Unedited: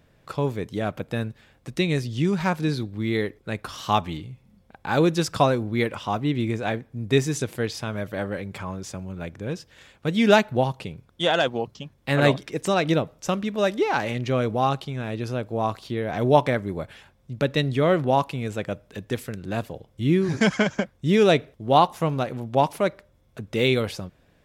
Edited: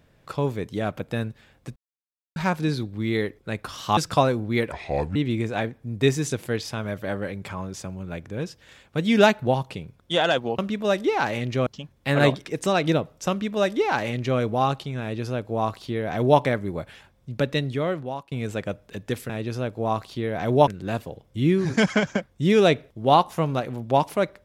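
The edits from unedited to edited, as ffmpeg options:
-filter_complex "[0:a]asplit=11[s0][s1][s2][s3][s4][s5][s6][s7][s8][s9][s10];[s0]atrim=end=1.76,asetpts=PTS-STARTPTS,afade=t=out:st=1.756:d=0.004:c=hsin[s11];[s1]atrim=start=1.76:end=2.36,asetpts=PTS-STARTPTS,volume=0[s12];[s2]atrim=start=2.36:end=3.972,asetpts=PTS-STARTPTS,afade=t=in:d=0.004:c=hsin[s13];[s3]atrim=start=5.198:end=5.954[s14];[s4]atrim=start=5.95:end=6.25,asetpts=PTS-STARTPTS,asetrate=30429,aresample=44100[s15];[s5]atrim=start=6.246:end=11.682[s16];[s6]atrim=start=13.318:end=14.402[s17];[s7]atrim=start=11.678:end=18.33,asetpts=PTS-STARTPTS,afade=t=out:st=5.702:d=0.95:silence=0.0841395[s18];[s8]atrim=start=18.33:end=19.312,asetpts=PTS-STARTPTS,afade=t=in:d=0.004:c=hsin:silence=0.0841395[s19];[s9]atrim=start=15.028:end=16.412[s20];[s10]atrim=start=19.308[s21];[s11][s12][s13]concat=n=3:v=0:a=1[s22];[s22][s14]acrossfade=d=0.004:c1=hsin:c2=hsin[s23];[s23][s15]acrossfade=d=0.004:c1=hsin:c2=hsin[s24];[s24][s16]acrossfade=d=0.004:c1=hsin:c2=hsin[s25];[s25][s17]acrossfade=d=0.004:c1=hsin:c2=hsin[s26];[s18][s19]concat=n=2:v=0:a=1[s27];[s26][s27]acrossfade=d=0.004:c1=hsin:c2=hsin[s28];[s28][s20]acrossfade=d=0.004:c1=hsin:c2=hsin[s29];[s29][s21]acrossfade=d=0.004:c1=hsin:c2=hsin"

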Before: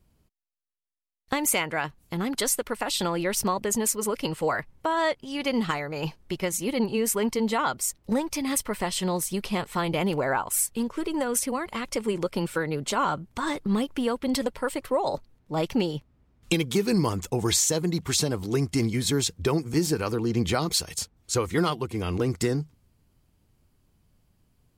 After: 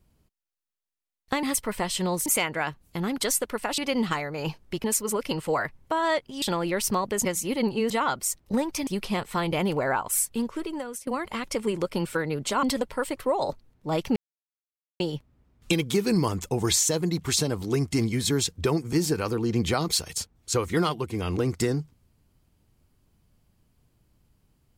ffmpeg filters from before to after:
-filter_complex "[0:a]asplit=12[s0][s1][s2][s3][s4][s5][s6][s7][s8][s9][s10][s11];[s0]atrim=end=1.432[s12];[s1]atrim=start=8.448:end=9.282[s13];[s2]atrim=start=1.428:end=2.952[s14];[s3]atrim=start=5.358:end=6.422[s15];[s4]atrim=start=3.778:end=5.362[s16];[s5]atrim=start=2.948:end=3.782[s17];[s6]atrim=start=6.418:end=7.072[s18];[s7]atrim=start=7.478:end=8.452[s19];[s8]atrim=start=9.278:end=11.48,asetpts=PTS-STARTPTS,afade=t=out:st=1.572:d=0.63:silence=0.1[s20];[s9]atrim=start=11.48:end=13.042,asetpts=PTS-STARTPTS,afade=t=in:d=0.004:c=hsin:silence=0.1[s21];[s10]atrim=start=14.278:end=15.81,asetpts=PTS-STARTPTS,afade=t=out:st=1.528:d=0.004:c=hsin,apad=pad_dur=0.84[s22];[s11]atrim=start=15.81,asetpts=PTS-STARTPTS,afade=t=in:d=0.004:c=hsin[s23];[s12][s13]acrossfade=d=0.004:c1=hsin:c2=hsin[s24];[s24][s14]acrossfade=d=0.004:c1=hsin:c2=hsin[s25];[s25][s15]acrossfade=d=0.004:c1=hsin:c2=hsin[s26];[s26][s16]acrossfade=d=0.004:c1=hsin:c2=hsin[s27];[s27][s17]acrossfade=d=0.004:c1=hsin:c2=hsin[s28];[s28][s18]acrossfade=d=0.004:c1=hsin:c2=hsin[s29];[s29][s19]acrossfade=d=0.004:c1=hsin:c2=hsin[s30];[s20][s21]concat=n=2:v=0:a=1[s31];[s30][s31]acrossfade=d=0.004:c1=hsin:c2=hsin[s32];[s22][s23]concat=n=2:v=0:a=1[s33];[s32][s33]acrossfade=d=0.004:c1=hsin:c2=hsin"

